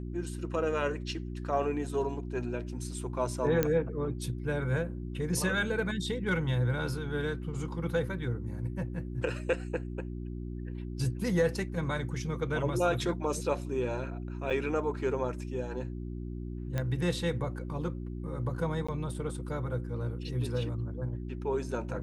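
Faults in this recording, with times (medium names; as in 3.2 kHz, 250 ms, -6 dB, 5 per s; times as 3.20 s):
hum 60 Hz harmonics 6 -38 dBFS
3.63 s: pop -12 dBFS
14.50–14.51 s: dropout 6 ms
16.78 s: pop -19 dBFS
18.87–18.89 s: dropout 15 ms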